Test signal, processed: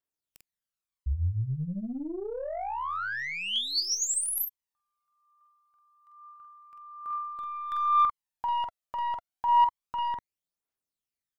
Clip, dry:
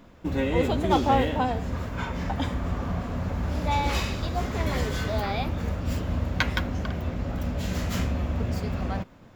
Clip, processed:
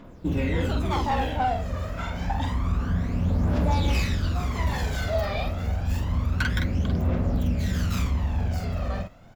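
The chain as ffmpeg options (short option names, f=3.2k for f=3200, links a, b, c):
-filter_complex "[0:a]asplit=2[a][b];[b]adelay=46,volume=-4dB[c];[a][c]amix=inputs=2:normalize=0,aeval=exprs='(tanh(8.91*val(0)+0.1)-tanh(0.1))/8.91':c=same,aphaser=in_gain=1:out_gain=1:delay=1.7:decay=0.58:speed=0.28:type=triangular,volume=-2dB"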